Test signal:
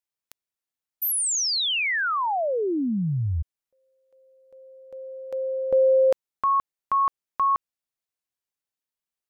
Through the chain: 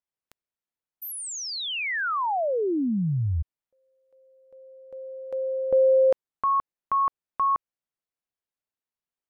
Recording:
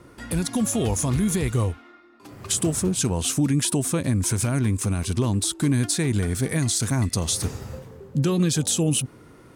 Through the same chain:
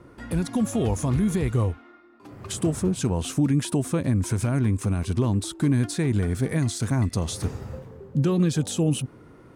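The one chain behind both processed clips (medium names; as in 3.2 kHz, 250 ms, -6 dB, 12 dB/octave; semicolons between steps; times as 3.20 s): treble shelf 2.9 kHz -11 dB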